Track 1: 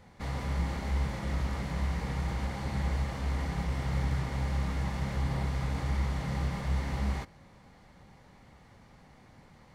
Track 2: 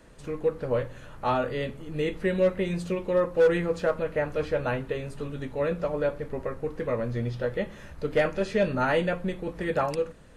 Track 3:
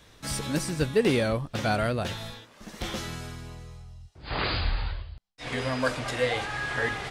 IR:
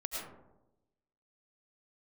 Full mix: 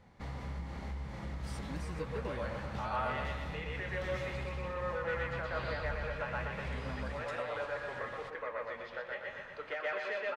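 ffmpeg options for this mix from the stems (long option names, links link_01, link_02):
-filter_complex "[0:a]volume=-5dB[link_01];[1:a]highpass=980,highshelf=frequency=6100:gain=-11.5,asplit=2[link_02][link_03];[link_03]highpass=frequency=720:poles=1,volume=10dB,asoftclip=type=tanh:threshold=-17dB[link_04];[link_02][link_04]amix=inputs=2:normalize=0,lowpass=frequency=2000:poles=1,volume=-6dB,adelay=1550,volume=-1.5dB,asplit=2[link_05][link_06];[link_06]volume=-5.5dB[link_07];[2:a]acompressor=threshold=-26dB:ratio=6,adelay=1200,volume=-14dB[link_08];[link_01][link_05]amix=inputs=2:normalize=0,acompressor=threshold=-37dB:ratio=6,volume=0dB[link_09];[link_07]aecho=0:1:121|242|363|484|605|726|847|968|1089:1|0.58|0.336|0.195|0.113|0.0656|0.0381|0.0221|0.0128[link_10];[link_08][link_09][link_10]amix=inputs=3:normalize=0,highshelf=frequency=6700:gain=-10"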